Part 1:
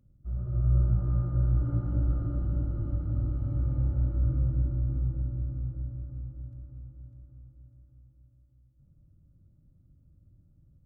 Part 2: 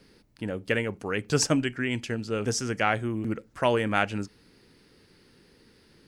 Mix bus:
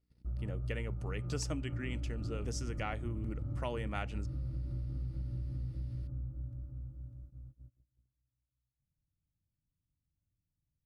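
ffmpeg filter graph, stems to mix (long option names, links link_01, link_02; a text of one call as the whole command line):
ffmpeg -i stem1.wav -i stem2.wav -filter_complex "[0:a]acompressor=threshold=-30dB:ratio=6,volume=0dB[link_01];[1:a]bandreject=frequency=1600:width=8.6,aeval=exprs='val(0)+0.00562*(sin(2*PI*60*n/s)+sin(2*PI*2*60*n/s)/2+sin(2*PI*3*60*n/s)/3+sin(2*PI*4*60*n/s)/4+sin(2*PI*5*60*n/s)/5)':channel_layout=same,volume=-8dB[link_02];[link_01][link_02]amix=inputs=2:normalize=0,agate=range=-26dB:threshold=-50dB:ratio=16:detection=peak,acompressor=threshold=-36dB:ratio=2.5" out.wav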